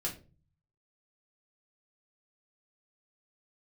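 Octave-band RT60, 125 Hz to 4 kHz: 0.95 s, 0.60 s, 0.40 s, 0.30 s, 0.25 s, 0.25 s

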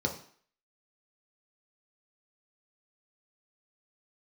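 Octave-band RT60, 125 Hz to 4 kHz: 0.40 s, 0.50 s, 0.50 s, 0.55 s, 0.55 s, 0.50 s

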